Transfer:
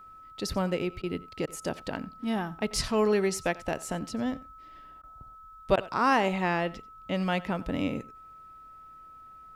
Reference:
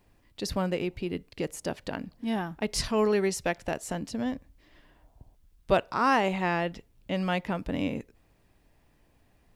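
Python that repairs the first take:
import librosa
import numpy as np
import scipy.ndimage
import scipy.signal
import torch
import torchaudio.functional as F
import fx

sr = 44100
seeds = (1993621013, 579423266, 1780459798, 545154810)

y = fx.notch(x, sr, hz=1300.0, q=30.0)
y = fx.fix_interpolate(y, sr, at_s=(1.02, 1.46, 5.02, 5.76), length_ms=13.0)
y = fx.fix_echo_inverse(y, sr, delay_ms=90, level_db=-20.0)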